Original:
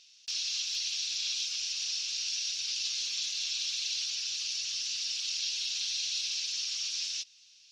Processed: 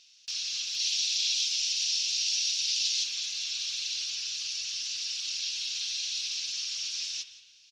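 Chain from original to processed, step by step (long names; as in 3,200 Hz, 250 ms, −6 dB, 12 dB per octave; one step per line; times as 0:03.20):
0:00.79–0:03.04: drawn EQ curve 250 Hz 0 dB, 550 Hz −17 dB, 1,900 Hz +1 dB, 3,200 Hz +5 dB
single-tap delay 174 ms −18 dB
convolution reverb RT60 1.3 s, pre-delay 53 ms, DRR 9 dB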